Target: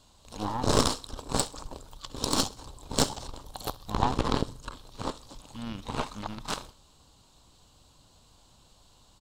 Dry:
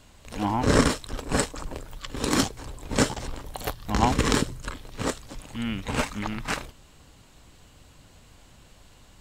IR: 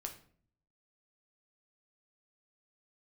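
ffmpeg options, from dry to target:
-filter_complex "[0:a]aeval=exprs='0.631*(cos(1*acos(clip(val(0)/0.631,-1,1)))-cos(1*PI/2))+0.0794*(cos(3*acos(clip(val(0)/0.631,-1,1)))-cos(3*PI/2))+0.1*(cos(6*acos(clip(val(0)/0.631,-1,1)))-cos(6*PI/2))':c=same,asettb=1/sr,asplit=3[a][b][c];[a]atrim=end=3.924[d];[b]atrim=start=3.92:end=6.4,asetpts=PTS-STARTPTS,afade=t=in:d=0.004:c=qsin,afade=t=out:st=2.476:d=0.004:c=qsin,acrossover=split=3400[e][f];[f]acompressor=threshold=-46dB:ratio=4:attack=1:release=60[g];[e][g]amix=inputs=2:normalize=0[h];[c]atrim=start=6.396[i];[d][h]acrossfade=d=0.004:c1=hsin:c2=qsin[j];[j][i]acrossfade=d=0.004:c1=qsin:c2=hsin,equalizer=f=1k:t=o:w=1:g=7,equalizer=f=2k:t=o:w=1:g=-11,equalizer=f=4k:t=o:w=1:g=9,equalizer=f=8k:t=o:w=1:g=3,aecho=1:1:65|130|195:0.0944|0.0415|0.0183,volume=-4dB"

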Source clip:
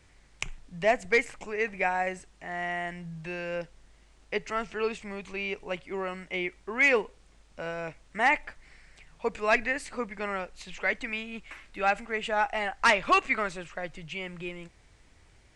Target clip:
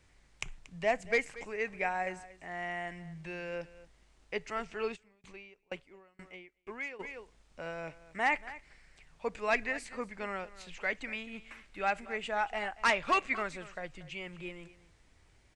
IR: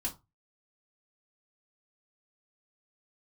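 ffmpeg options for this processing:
-filter_complex "[0:a]aecho=1:1:233:0.133,asplit=3[a][b][c];[a]afade=t=out:st=4.95:d=0.02[d];[b]aeval=exprs='val(0)*pow(10,-32*if(lt(mod(2.1*n/s,1),2*abs(2.1)/1000),1-mod(2.1*n/s,1)/(2*abs(2.1)/1000),(mod(2.1*n/s,1)-2*abs(2.1)/1000)/(1-2*abs(2.1)/1000))/20)':c=same,afade=t=in:st=4.95:d=0.02,afade=t=out:st=6.99:d=0.02[e];[c]afade=t=in:st=6.99:d=0.02[f];[d][e][f]amix=inputs=3:normalize=0,volume=-5.5dB"

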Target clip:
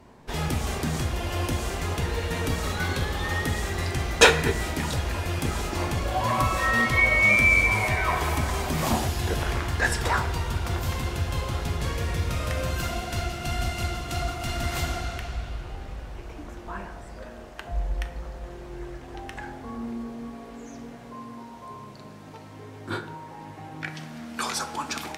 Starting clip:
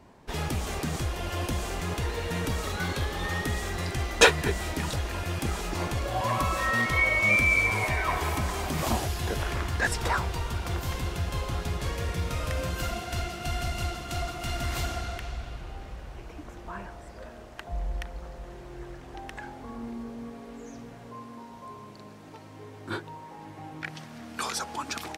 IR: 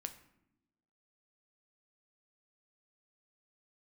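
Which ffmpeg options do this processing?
-filter_complex "[1:a]atrim=start_sample=2205,asetrate=40131,aresample=44100[a];[0:a][a]afir=irnorm=-1:irlink=0,volume=5dB"

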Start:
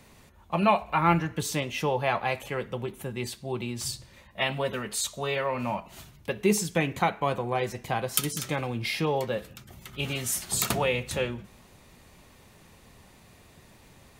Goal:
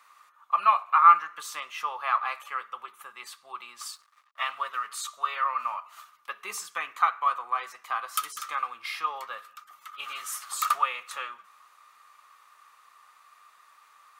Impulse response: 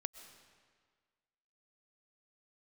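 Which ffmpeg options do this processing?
-filter_complex "[0:a]asettb=1/sr,asplit=3[a][b][c];[a]atrim=end=3.954[d];[b]atrim=start=3.95:end=4.89,asetpts=PTS-STARTPTS,afade=t=in:d=0.004:c=qsin,afade=t=out:st=0.936:d=0.004:c=qsin,aeval=exprs='sgn(val(0))*max(abs(val(0))-0.00282,0)':c=same[e];[c]atrim=start=4.886[f];[d][e]acrossfade=d=0.004:c1=hsin:c2=qsin[g];[g][f]acrossfade=d=0.004:c1=qsin:c2=hsin,highpass=f=1.2k:t=q:w=15,volume=-6.5dB"

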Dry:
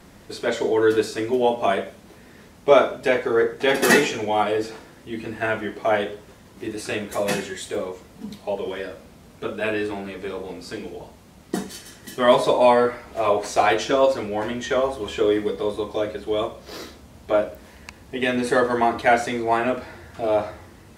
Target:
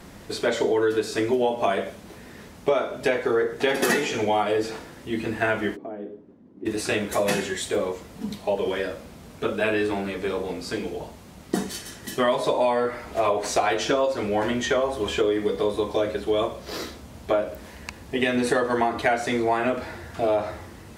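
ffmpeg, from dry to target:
-filter_complex "[0:a]acompressor=threshold=-22dB:ratio=8,asplit=3[a][b][c];[a]afade=t=out:st=5.75:d=0.02[d];[b]bandpass=f=270:t=q:w=2.7:csg=0,afade=t=in:st=5.75:d=0.02,afade=t=out:st=6.65:d=0.02[e];[c]afade=t=in:st=6.65:d=0.02[f];[d][e][f]amix=inputs=3:normalize=0,volume=3.5dB"

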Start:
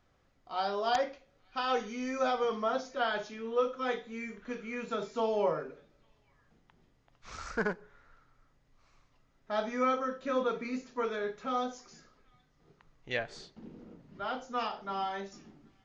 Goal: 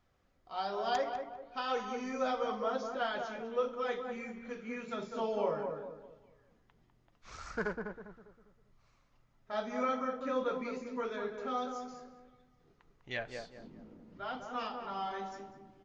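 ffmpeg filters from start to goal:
-filter_complex "[0:a]asplit=2[a][b];[b]adelay=200,lowpass=f=1.2k:p=1,volume=-4dB,asplit=2[c][d];[d]adelay=200,lowpass=f=1.2k:p=1,volume=0.41,asplit=2[e][f];[f]adelay=200,lowpass=f=1.2k:p=1,volume=0.41,asplit=2[g][h];[h]adelay=200,lowpass=f=1.2k:p=1,volume=0.41,asplit=2[i][j];[j]adelay=200,lowpass=f=1.2k:p=1,volume=0.41[k];[a][c][e][g][i][k]amix=inputs=6:normalize=0,flanger=delay=0.9:depth=3.2:regen=-63:speed=1.6:shape=sinusoidal"

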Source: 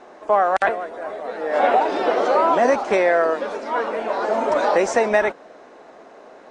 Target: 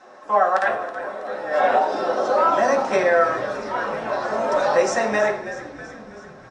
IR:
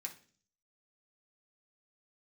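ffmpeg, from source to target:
-filter_complex "[0:a]asettb=1/sr,asplit=3[a][b][c];[a]atrim=end=1.784[d];[b]atrim=start=1.78:end=2.37,asetpts=PTS-STARTPTS,afade=t=in:d=0.004:c=qsin,afade=t=out:st=0.586:d=0.004:c=qsin,equalizer=f=2.2k:t=o:w=0.94:g=-11[e];[c]atrim=start=2.366[f];[d][e]acrossfade=d=0.004:c1=hsin:c2=qsin[g];[g][f]acrossfade=d=0.004:c1=qsin:c2=hsin,asplit=8[h][i][j][k][l][m][n][o];[i]adelay=324,afreqshift=-75,volume=-14dB[p];[j]adelay=648,afreqshift=-150,volume=-18.3dB[q];[k]adelay=972,afreqshift=-225,volume=-22.6dB[r];[l]adelay=1296,afreqshift=-300,volume=-26.9dB[s];[m]adelay=1620,afreqshift=-375,volume=-31.2dB[t];[n]adelay=1944,afreqshift=-450,volume=-35.5dB[u];[o]adelay=2268,afreqshift=-525,volume=-39.8dB[v];[h][p][q][r][s][t][u][v]amix=inputs=8:normalize=0[w];[1:a]atrim=start_sample=2205,asetrate=30870,aresample=44100[x];[w][x]afir=irnorm=-1:irlink=0"

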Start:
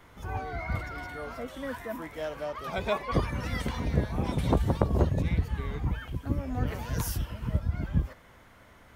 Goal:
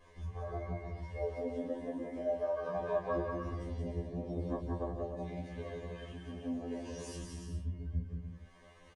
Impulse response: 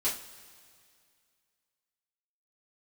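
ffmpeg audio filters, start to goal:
-filter_complex "[0:a]afwtdn=0.0316,asettb=1/sr,asplit=3[a][b][c];[a]atrim=end=4.954[d];[b]atrim=start=4.95:end=7.22,asetpts=PTS-STARTPTS,afade=t=in:d=0.004:c=qsin,afade=t=out:st=2.266:d=0.004:c=qsin,highpass=f=1.1k:p=1[e];[c]atrim=start=7.216[f];[d][e]acrossfade=d=0.004:c1=hsin:c2=qsin[g];[g][f]acrossfade=d=0.004:c1=qsin:c2=hsin,acompressor=threshold=-53dB:ratio=3,flanger=delay=1.8:depth=3.5:regen=51:speed=0.88:shape=sinusoidal,aecho=1:1:180|297|373|422.5|454.6:0.631|0.398|0.251|0.158|0.1[h];[1:a]atrim=start_sample=2205,atrim=end_sample=3969,asetrate=61740,aresample=44100[i];[h][i]afir=irnorm=-1:irlink=0,aresample=22050,aresample=44100,asuperstop=centerf=1400:order=8:qfactor=5.4,afftfilt=real='re*2*eq(mod(b,4),0)':imag='im*2*eq(mod(b,4),0)':win_size=2048:overlap=0.75,volume=14.5dB"

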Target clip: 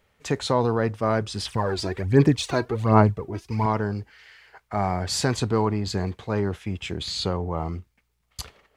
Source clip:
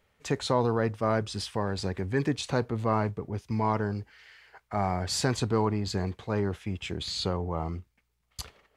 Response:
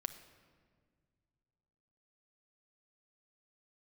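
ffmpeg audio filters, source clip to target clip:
-filter_complex "[0:a]asettb=1/sr,asplit=3[a][b][c];[a]atrim=end=1.454[d];[b]atrim=start=1.45:end=3.66,asetpts=PTS-STARTPTS,afade=t=in:d=0.004:c=qsin,afade=t=out:st=2.206:d=0.004:c=qsin,aphaser=in_gain=1:out_gain=1:delay=3.1:decay=0.65:speed=1.3:type=sinusoidal[e];[c]atrim=start=3.656[f];[d][e]acrossfade=d=0.004:c1=hsin:c2=qsin[g];[g][f]acrossfade=d=0.004:c1=qsin:c2=hsin,volume=3.5dB"

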